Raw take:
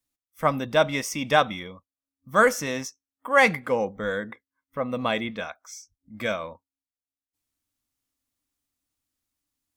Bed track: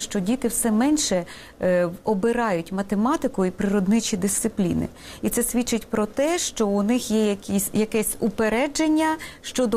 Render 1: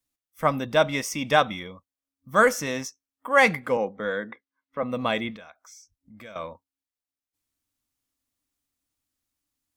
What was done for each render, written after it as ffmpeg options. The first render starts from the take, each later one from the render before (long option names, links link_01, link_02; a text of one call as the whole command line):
ffmpeg -i in.wav -filter_complex "[0:a]asettb=1/sr,asplit=3[link_01][link_02][link_03];[link_01]atrim=end=3.774[link_04];[link_02]atrim=start=3.77:end=4.83,asetpts=PTS-STARTPTS,afade=type=in:duration=0.004:curve=qsin,afade=type=out:start_time=1.056:duration=0.004:curve=qsin,acrossover=split=160 5300:gain=0.224 1 0.0794[link_05][link_06][link_07];[link_05][link_06][link_07]amix=inputs=3:normalize=0[link_08];[link_03]atrim=start=4.826[link_09];[link_04][link_08]acrossfade=duration=0.004:curve1=hsin:curve2=qsin[link_10];[link_10][link_09]acrossfade=duration=0.004:curve1=qsin:curve2=hsin,asettb=1/sr,asplit=3[link_11][link_12][link_13];[link_11]atrim=end=5.364[link_14];[link_12]atrim=start=5.36:end=6.36,asetpts=PTS-STARTPTS,afade=type=in:duration=0.004:curve=qsin,afade=type=out:start_time=0.996:duration=0.004:curve=qsin,acompressor=threshold=-48dB:ratio=2.5:attack=3.2:release=140:knee=1:detection=peak[link_15];[link_13]atrim=start=6.356[link_16];[link_14][link_15]acrossfade=duration=0.004:curve1=hsin:curve2=qsin[link_17];[link_17][link_16]acrossfade=duration=0.004:curve1=qsin:curve2=hsin" out.wav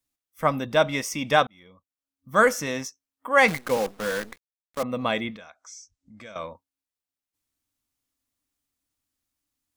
ffmpeg -i in.wav -filter_complex "[0:a]asettb=1/sr,asplit=3[link_01][link_02][link_03];[link_01]atrim=end=3.484[link_04];[link_02]atrim=start=3.48:end=4.83,asetpts=PTS-STARTPTS,afade=type=in:duration=0.004:curve=qsin,afade=type=out:start_time=1.346:duration=0.004:curve=qsin,acrusher=bits=6:dc=4:mix=0:aa=0.000001[link_05];[link_03]atrim=start=4.826[link_06];[link_04][link_05]acrossfade=duration=0.004:curve1=hsin:curve2=qsin[link_07];[link_07][link_06]acrossfade=duration=0.004:curve1=qsin:curve2=hsin,asettb=1/sr,asplit=3[link_08][link_09][link_10];[link_08]atrim=end=5.384[link_11];[link_09]atrim=start=5.38:end=6.46,asetpts=PTS-STARTPTS,afade=type=in:duration=0.004:curve=qsin,afade=type=out:start_time=1.076:duration=0.004:curve=qsin,lowpass=frequency=7000:width_type=q:width=1.9[link_12];[link_10]atrim=start=6.456[link_13];[link_11][link_12]acrossfade=duration=0.004:curve1=hsin:curve2=qsin[link_14];[link_14][link_13]acrossfade=duration=0.004:curve1=qsin:curve2=hsin,asplit=2[link_15][link_16];[link_15]atrim=end=1.47,asetpts=PTS-STARTPTS,afade=type=out:start_time=1.466:duration=0.004:curve=hsin[link_17];[link_16]atrim=start=1.47,asetpts=PTS-STARTPTS,afade=type=in:duration=0.88[link_18];[link_17][link_18]concat=n=2:v=0:a=1" out.wav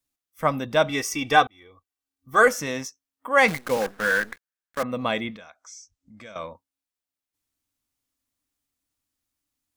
ffmpeg -i in.wav -filter_complex "[0:a]asettb=1/sr,asplit=3[link_01][link_02][link_03];[link_01]atrim=end=0.894[link_04];[link_02]atrim=start=0.89:end=2.48,asetpts=PTS-STARTPTS,afade=type=in:duration=0.004:curve=qsin,afade=type=out:start_time=1.586:duration=0.004:curve=qsin,aecho=1:1:2.6:0.78,atrim=end_sample=70119[link_05];[link_03]atrim=start=2.476[link_06];[link_04][link_05]acrossfade=duration=0.004:curve1=hsin:curve2=qsin[link_07];[link_07][link_06]acrossfade=duration=0.004:curve1=qsin:curve2=hsin,asettb=1/sr,asplit=3[link_08][link_09][link_10];[link_08]atrim=end=3.814[link_11];[link_09]atrim=start=3.81:end=4.92,asetpts=PTS-STARTPTS,afade=type=in:duration=0.004:curve=qsin,afade=type=out:start_time=1.106:duration=0.004:curve=qsin,equalizer=frequency=1600:width_type=o:width=0.45:gain=13[link_12];[link_10]atrim=start=4.916[link_13];[link_11][link_12]acrossfade=duration=0.004:curve1=hsin:curve2=qsin[link_14];[link_14][link_13]acrossfade=duration=0.004:curve1=qsin:curve2=hsin" out.wav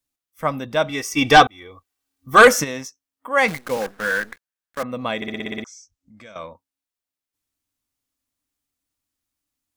ffmpeg -i in.wav -filter_complex "[0:a]asplit=3[link_01][link_02][link_03];[link_01]afade=type=out:start_time=1.16:duration=0.02[link_04];[link_02]aeval=exprs='0.708*sin(PI/2*2*val(0)/0.708)':channel_layout=same,afade=type=in:start_time=1.16:duration=0.02,afade=type=out:start_time=2.63:duration=0.02[link_05];[link_03]afade=type=in:start_time=2.63:duration=0.02[link_06];[link_04][link_05][link_06]amix=inputs=3:normalize=0,asplit=9[link_07][link_08][link_09][link_10][link_11][link_12][link_13][link_14][link_15];[link_07]atrim=end=5.222[link_16];[link_08]atrim=start=5.158:end=5.222[link_17];[link_09]atrim=start=5.158:end=5.222[link_18];[link_10]atrim=start=5.158:end=5.222[link_19];[link_11]atrim=start=5.158:end=5.222[link_20];[link_12]atrim=start=5.158:end=5.222[link_21];[link_13]atrim=start=5.158:end=5.222[link_22];[link_14]atrim=start=5.158:end=5.222[link_23];[link_15]atrim=start=5.638[link_24];[link_16][link_17]acrossfade=duration=0.004:curve1=hsin:curve2=hsin[link_25];[link_25][link_18]acrossfade=duration=0.004:curve1=hsin:curve2=hsin[link_26];[link_26][link_19]acrossfade=duration=0.004:curve1=hsin:curve2=hsin[link_27];[link_27][link_20]acrossfade=duration=0.004:curve1=hsin:curve2=hsin[link_28];[link_28][link_21]acrossfade=duration=0.004:curve1=hsin:curve2=hsin[link_29];[link_29][link_22]acrossfade=duration=0.004:curve1=hsin:curve2=hsin[link_30];[link_30][link_23]acrossfade=duration=0.004:curve1=hsin:curve2=hsin[link_31];[link_31][link_24]acrossfade=duration=0.004:curve1=hsin:curve2=hsin" out.wav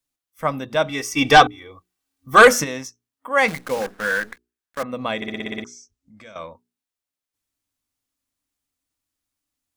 ffmpeg -i in.wav -af "equalizer=frequency=15000:width=5.2:gain=-9,bandreject=frequency=60:width_type=h:width=6,bandreject=frequency=120:width_type=h:width=6,bandreject=frequency=180:width_type=h:width=6,bandreject=frequency=240:width_type=h:width=6,bandreject=frequency=300:width_type=h:width=6,bandreject=frequency=360:width_type=h:width=6,bandreject=frequency=420:width_type=h:width=6" out.wav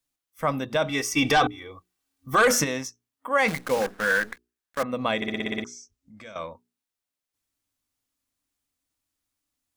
ffmpeg -i in.wav -af "alimiter=limit=-12.5dB:level=0:latency=1:release=13" out.wav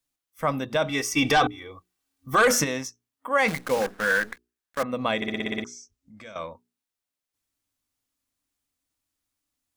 ffmpeg -i in.wav -af anull out.wav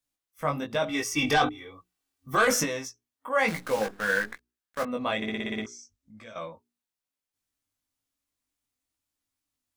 ffmpeg -i in.wav -af "flanger=delay=17.5:depth=3:speed=1.1" out.wav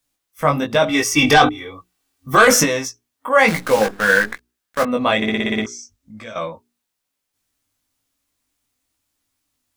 ffmpeg -i in.wav -af "volume=11.5dB,alimiter=limit=-2dB:level=0:latency=1" out.wav